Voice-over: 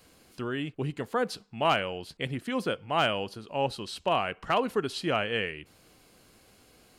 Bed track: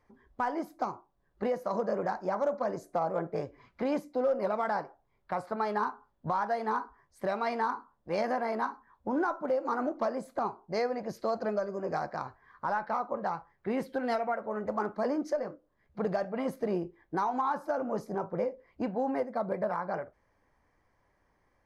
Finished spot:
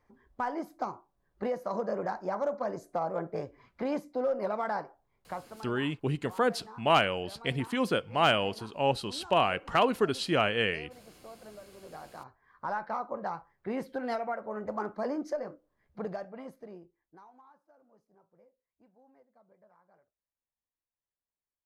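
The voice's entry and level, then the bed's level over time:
5.25 s, +1.5 dB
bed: 5.26 s -1.5 dB
5.66 s -18 dB
11.66 s -18 dB
12.68 s -2.5 dB
15.89 s -2.5 dB
17.66 s -32 dB

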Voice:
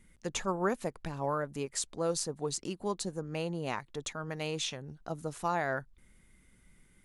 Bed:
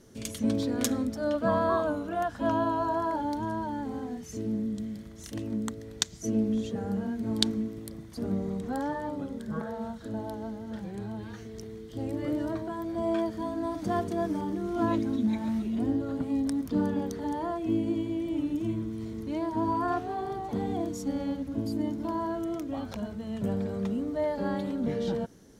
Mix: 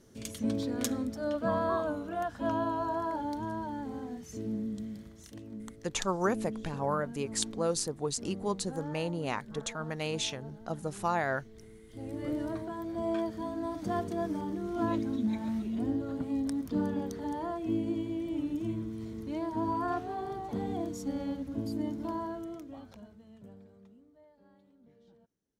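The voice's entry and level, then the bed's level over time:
5.60 s, +1.5 dB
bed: 5.07 s -4 dB
5.4 s -11.5 dB
11.82 s -11.5 dB
12.27 s -3.5 dB
22.11 s -3.5 dB
24.28 s -32 dB

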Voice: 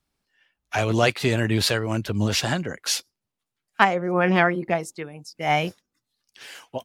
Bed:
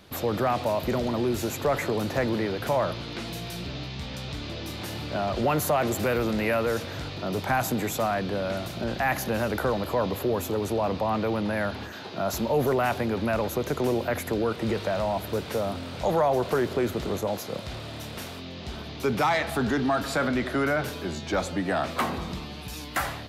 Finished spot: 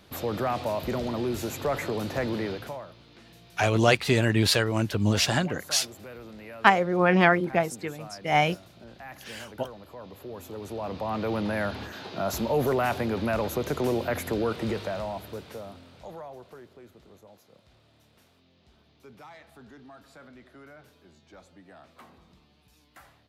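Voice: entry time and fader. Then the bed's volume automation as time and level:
2.85 s, -0.5 dB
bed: 2.52 s -3 dB
2.86 s -18 dB
9.98 s -18 dB
11.37 s -1 dB
14.58 s -1 dB
16.74 s -24.5 dB

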